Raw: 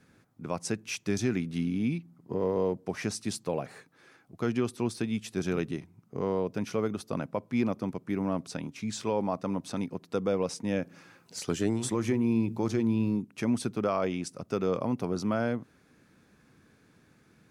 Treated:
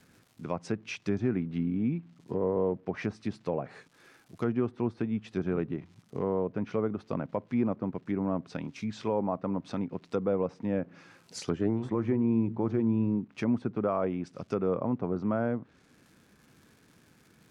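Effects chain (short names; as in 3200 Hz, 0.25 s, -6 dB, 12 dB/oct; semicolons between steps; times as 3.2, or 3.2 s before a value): crackle 390/s -51 dBFS; treble ducked by the level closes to 1400 Hz, closed at -27.5 dBFS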